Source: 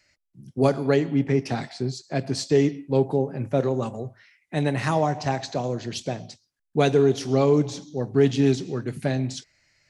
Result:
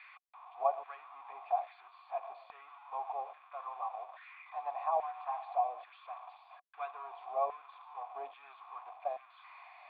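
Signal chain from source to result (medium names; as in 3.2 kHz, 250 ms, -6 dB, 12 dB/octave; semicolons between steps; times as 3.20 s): zero-crossing glitches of -13.5 dBFS; high-pass 230 Hz; differentiator; LFO high-pass saw down 1.2 Hz 540–1700 Hz; cascade formant filter a; trim +17 dB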